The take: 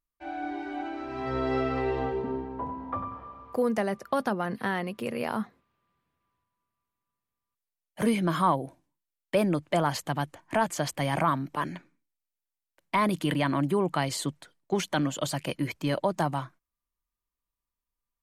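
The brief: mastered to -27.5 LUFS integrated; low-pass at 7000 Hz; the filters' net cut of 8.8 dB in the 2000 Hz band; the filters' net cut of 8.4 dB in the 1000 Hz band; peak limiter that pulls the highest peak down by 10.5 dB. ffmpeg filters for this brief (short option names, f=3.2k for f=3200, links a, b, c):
-af "lowpass=7k,equalizer=f=1k:t=o:g=-9,equalizer=f=2k:t=o:g=-8,volume=9dB,alimiter=limit=-17dB:level=0:latency=1"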